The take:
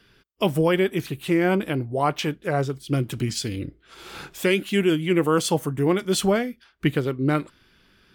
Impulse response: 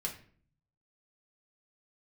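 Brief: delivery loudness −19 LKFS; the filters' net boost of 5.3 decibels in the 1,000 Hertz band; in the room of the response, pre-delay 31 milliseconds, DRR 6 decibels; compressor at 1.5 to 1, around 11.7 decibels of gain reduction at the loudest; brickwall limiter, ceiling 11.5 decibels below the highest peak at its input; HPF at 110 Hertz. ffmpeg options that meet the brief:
-filter_complex "[0:a]highpass=110,equalizer=frequency=1000:width_type=o:gain=7,acompressor=threshold=-47dB:ratio=1.5,alimiter=level_in=3.5dB:limit=-24dB:level=0:latency=1,volume=-3.5dB,asplit=2[link_01][link_02];[1:a]atrim=start_sample=2205,adelay=31[link_03];[link_02][link_03]afir=irnorm=-1:irlink=0,volume=-7.5dB[link_04];[link_01][link_04]amix=inputs=2:normalize=0,volume=18.5dB"

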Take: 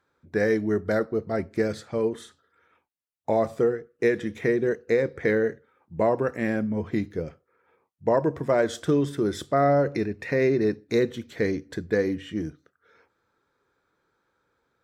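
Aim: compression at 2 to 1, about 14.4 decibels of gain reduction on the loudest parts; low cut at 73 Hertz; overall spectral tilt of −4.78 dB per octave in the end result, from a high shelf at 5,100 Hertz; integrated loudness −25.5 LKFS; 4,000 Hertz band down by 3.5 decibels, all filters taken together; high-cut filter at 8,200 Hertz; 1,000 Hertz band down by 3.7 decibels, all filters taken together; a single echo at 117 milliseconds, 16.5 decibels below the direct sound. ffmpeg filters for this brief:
ffmpeg -i in.wav -af "highpass=73,lowpass=8200,equalizer=frequency=1000:width_type=o:gain=-6,equalizer=frequency=4000:width_type=o:gain=-6.5,highshelf=frequency=5100:gain=6,acompressor=threshold=-46dB:ratio=2,aecho=1:1:117:0.15,volume=14.5dB" out.wav

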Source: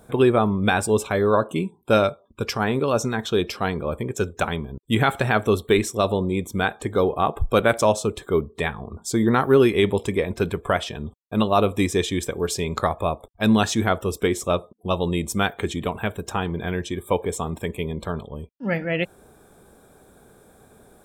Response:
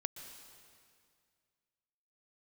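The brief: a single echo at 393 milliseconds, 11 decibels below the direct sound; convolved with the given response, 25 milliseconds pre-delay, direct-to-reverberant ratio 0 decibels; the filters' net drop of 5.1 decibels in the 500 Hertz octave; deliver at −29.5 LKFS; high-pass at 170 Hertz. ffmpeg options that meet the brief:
-filter_complex "[0:a]highpass=170,equalizer=frequency=500:width_type=o:gain=-6.5,aecho=1:1:393:0.282,asplit=2[link_01][link_02];[1:a]atrim=start_sample=2205,adelay=25[link_03];[link_02][link_03]afir=irnorm=-1:irlink=0,volume=1dB[link_04];[link_01][link_04]amix=inputs=2:normalize=0,volume=-6.5dB"

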